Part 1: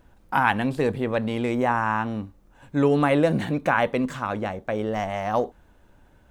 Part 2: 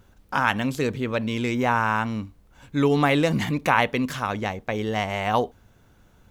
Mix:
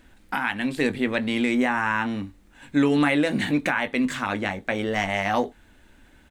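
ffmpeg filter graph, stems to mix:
-filter_complex "[0:a]equalizer=f=125:t=o:w=1:g=-12,equalizer=f=250:t=o:w=1:g=7,equalizer=f=500:t=o:w=1:g=-4,equalizer=f=1k:t=o:w=1:g=-5,equalizer=f=2k:t=o:w=1:g=9,equalizer=f=4k:t=o:w=1:g=8,equalizer=f=8k:t=o:w=1:g=10,volume=1.5dB[a];[1:a]equalizer=f=860:t=o:w=0.27:g=6.5,adelay=20,volume=-8dB[b];[a][b]amix=inputs=2:normalize=0,equalizer=f=5.9k:w=0.82:g=-5,alimiter=limit=-11dB:level=0:latency=1:release=424"

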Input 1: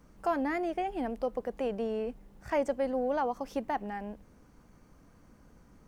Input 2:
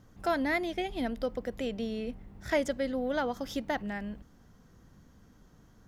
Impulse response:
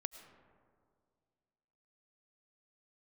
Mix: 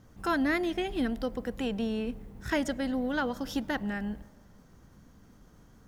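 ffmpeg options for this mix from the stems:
-filter_complex "[0:a]agate=range=-33dB:threshold=-52dB:ratio=3:detection=peak,highshelf=f=7.1k:g=8,volume=-1dB[a];[1:a]volume=-1dB,asplit=2[b][c];[c]volume=-9.5dB[d];[2:a]atrim=start_sample=2205[e];[d][e]afir=irnorm=-1:irlink=0[f];[a][b][f]amix=inputs=3:normalize=0"

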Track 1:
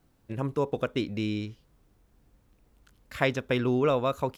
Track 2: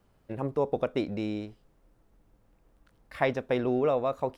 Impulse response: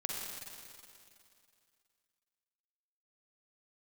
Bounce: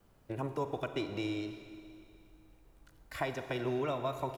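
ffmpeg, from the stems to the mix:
-filter_complex "[0:a]highshelf=f=3.9k:g=9.5,alimiter=limit=-17.5dB:level=0:latency=1:release=262,volume=-14.5dB,asplit=2[a][b];[b]volume=-6dB[c];[1:a]acrossover=split=200|1000[d][e][f];[d]acompressor=threshold=-51dB:ratio=4[g];[e]acompressor=threshold=-38dB:ratio=4[h];[f]acompressor=threshold=-41dB:ratio=4[i];[g][h][i]amix=inputs=3:normalize=0,volume=-1,adelay=2.1,volume=-3.5dB,asplit=2[j][k];[k]volume=-4.5dB[l];[2:a]atrim=start_sample=2205[m];[c][l]amix=inputs=2:normalize=0[n];[n][m]afir=irnorm=-1:irlink=0[o];[a][j][o]amix=inputs=3:normalize=0"

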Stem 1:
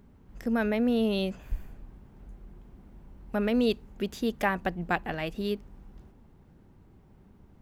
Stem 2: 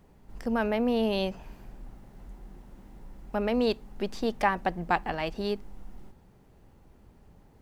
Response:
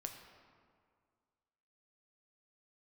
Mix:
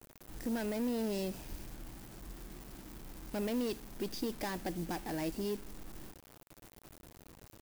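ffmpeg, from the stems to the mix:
-filter_complex "[0:a]acontrast=66,alimiter=limit=-14.5dB:level=0:latency=1:release=489,aeval=exprs='(tanh(8.91*val(0)+0.3)-tanh(0.3))/8.91':c=same,volume=-17dB,asplit=2[a][b];[b]volume=-13dB[c];[1:a]asoftclip=type=tanh:threshold=-35dB,volume=-5.5dB[d];[2:a]atrim=start_sample=2205[e];[c][e]afir=irnorm=-1:irlink=0[f];[a][d][f]amix=inputs=3:normalize=0,equalizer=f=125:t=o:w=0.33:g=4,equalizer=f=315:t=o:w=0.33:g=11,equalizer=f=1.25k:t=o:w=0.33:g=-7,equalizer=f=5k:t=o:w=0.33:g=8,acrusher=bits=8:mix=0:aa=0.000001,highshelf=f=6.9k:g=10.5"

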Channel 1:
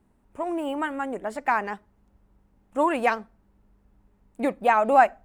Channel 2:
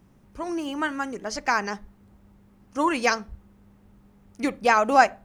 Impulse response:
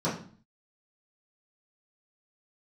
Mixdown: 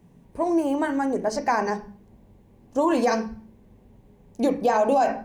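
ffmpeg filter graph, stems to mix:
-filter_complex "[0:a]volume=2dB[a];[1:a]volume=-1dB,asplit=2[b][c];[c]volume=-13.5dB[d];[2:a]atrim=start_sample=2205[e];[d][e]afir=irnorm=-1:irlink=0[f];[a][b][f]amix=inputs=3:normalize=0,equalizer=f=1.3k:t=o:w=0.25:g=-14,alimiter=limit=-12.5dB:level=0:latency=1:release=52"

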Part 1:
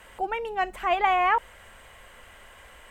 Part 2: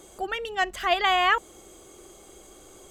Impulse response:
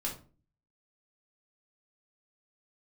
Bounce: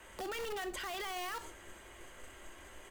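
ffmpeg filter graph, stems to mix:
-filter_complex "[0:a]acrossover=split=330|3000[a][b][c];[b]acompressor=threshold=-25dB:ratio=5[d];[a][d][c]amix=inputs=3:normalize=0,aeval=exprs='(mod(28.2*val(0)+1,2)-1)/28.2':c=same,volume=-8.5dB,asplit=3[e][f][g];[f]volume=-7dB[h];[1:a]alimiter=limit=-21dB:level=0:latency=1:release=34,volume=-1,adelay=2.2,volume=-3.5dB,asplit=2[i][j];[j]volume=-12.5dB[k];[g]apad=whole_len=128401[l];[i][l]sidechaingate=range=-33dB:threshold=-55dB:ratio=16:detection=peak[m];[2:a]atrim=start_sample=2205[n];[h][k]amix=inputs=2:normalize=0[o];[o][n]afir=irnorm=-1:irlink=0[p];[e][m][p]amix=inputs=3:normalize=0,alimiter=level_in=8.5dB:limit=-24dB:level=0:latency=1:release=59,volume=-8.5dB"

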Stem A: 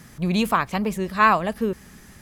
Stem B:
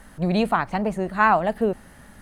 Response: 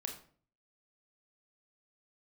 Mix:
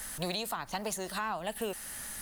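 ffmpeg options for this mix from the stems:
-filter_complex "[0:a]asplit=2[a][b];[b]highpass=f=720:p=1,volume=9dB,asoftclip=type=tanh:threshold=-4dB[c];[a][c]amix=inputs=2:normalize=0,lowpass=f=5.9k:p=1,volume=-6dB,volume=-17.5dB[d];[1:a]equalizer=f=160:t=o:w=2.8:g=-4.5,volume=-3dB[e];[d][e]amix=inputs=2:normalize=0,acrossover=split=350|1200[f][g][h];[f]acompressor=threshold=-40dB:ratio=4[i];[g]acompressor=threshold=-34dB:ratio=4[j];[h]acompressor=threshold=-40dB:ratio=4[k];[i][j][k]amix=inputs=3:normalize=0,crystalizer=i=7.5:c=0,alimiter=limit=-23dB:level=0:latency=1:release=382"

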